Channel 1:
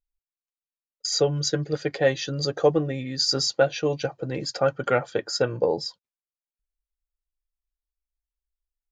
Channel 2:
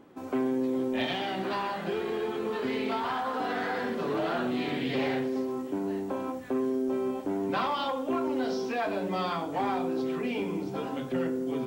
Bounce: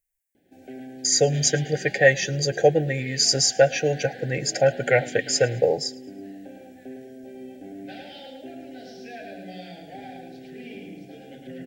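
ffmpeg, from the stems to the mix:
-filter_complex "[0:a]equalizer=f=125:t=o:w=1:g=9,equalizer=f=500:t=o:w=1:g=8,equalizer=f=1000:t=o:w=1:g=10,equalizer=f=2000:t=o:w=1:g=11,equalizer=f=4000:t=o:w=1:g=-10,equalizer=f=8000:t=o:w=1:g=4,crystalizer=i=4.5:c=0,volume=0.596,asplit=2[s0][s1];[s1]volume=0.0631[s2];[1:a]adelay=350,volume=0.422,asplit=2[s3][s4];[s4]volume=0.631[s5];[s2][s5]amix=inputs=2:normalize=0,aecho=0:1:109|218|327|436|545|654:1|0.4|0.16|0.064|0.0256|0.0102[s6];[s0][s3][s6]amix=inputs=3:normalize=0,asuperstop=centerf=1100:order=12:qfactor=1.5,equalizer=f=400:t=o:w=1.6:g=-4"

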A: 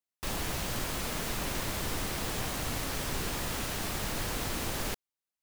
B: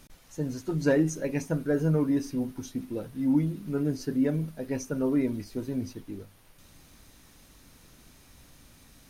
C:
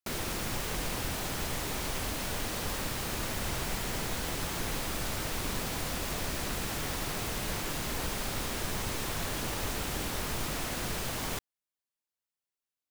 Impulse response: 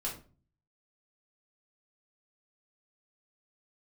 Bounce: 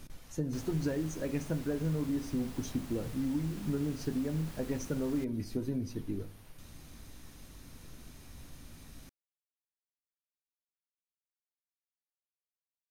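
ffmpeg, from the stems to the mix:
-filter_complex "[0:a]adelay=300,volume=0.15[s0];[1:a]acompressor=threshold=0.0224:ratio=12,volume=0.891,asplit=2[s1][s2];[s2]volume=0.168[s3];[3:a]atrim=start_sample=2205[s4];[s3][s4]afir=irnorm=-1:irlink=0[s5];[s0][s1][s5]amix=inputs=3:normalize=0,lowshelf=f=290:g=6"

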